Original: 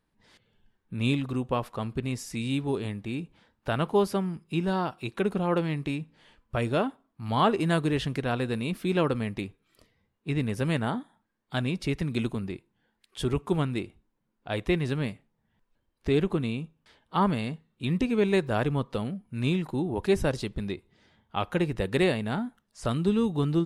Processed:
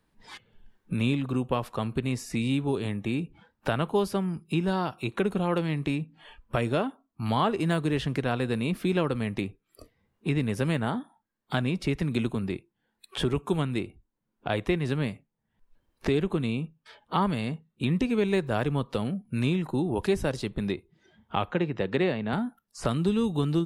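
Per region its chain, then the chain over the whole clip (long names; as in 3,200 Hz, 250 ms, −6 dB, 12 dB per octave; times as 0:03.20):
0:21.51–0:22.33: high-pass filter 140 Hz + high-frequency loss of the air 140 metres
whole clip: de-essing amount 70%; noise reduction from a noise print of the clip's start 16 dB; multiband upward and downward compressor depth 70%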